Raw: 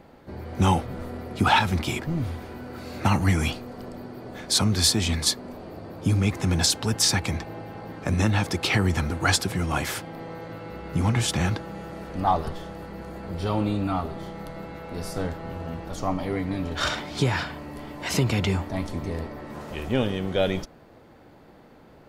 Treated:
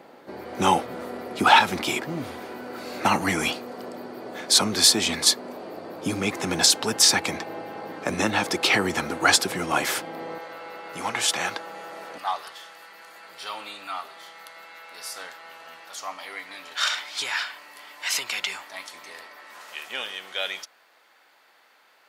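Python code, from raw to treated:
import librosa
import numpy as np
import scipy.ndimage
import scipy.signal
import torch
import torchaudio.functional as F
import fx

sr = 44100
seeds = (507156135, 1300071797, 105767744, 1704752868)

y = fx.highpass(x, sr, hz=fx.steps((0.0, 320.0), (10.38, 660.0), (12.18, 1500.0)), slope=12)
y = y * 10.0 ** (4.5 / 20.0)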